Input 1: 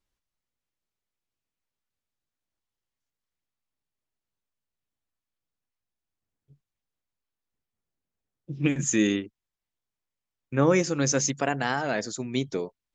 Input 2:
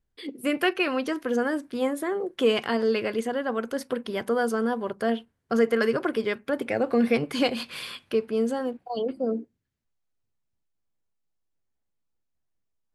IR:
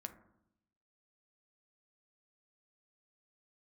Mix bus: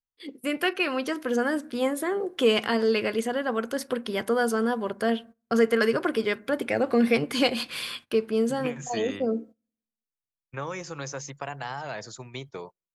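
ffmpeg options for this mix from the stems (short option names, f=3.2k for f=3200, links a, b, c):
-filter_complex "[0:a]equalizer=f=125:t=o:w=1:g=7,equalizer=f=250:t=o:w=1:g=-10,equalizer=f=1k:t=o:w=1:g=10,equalizer=f=8k:t=o:w=1:g=-4,acrossover=split=230|830|2100[a][b][c][d];[a]acompressor=threshold=-38dB:ratio=4[e];[b]acompressor=threshold=-30dB:ratio=4[f];[c]acompressor=threshold=-38dB:ratio=4[g];[d]acompressor=threshold=-38dB:ratio=4[h];[e][f][g][h]amix=inputs=4:normalize=0,volume=-6dB,asplit=2[i][j];[j]volume=-23.5dB[k];[1:a]dynaudnorm=f=390:g=5:m=4dB,volume=-5.5dB,asplit=2[l][m];[m]volume=-8.5dB[n];[2:a]atrim=start_sample=2205[o];[k][n]amix=inputs=2:normalize=0[p];[p][o]afir=irnorm=-1:irlink=0[q];[i][l][q]amix=inputs=3:normalize=0,highshelf=f=2.1k:g=4.5,agate=range=-20dB:threshold=-43dB:ratio=16:detection=peak"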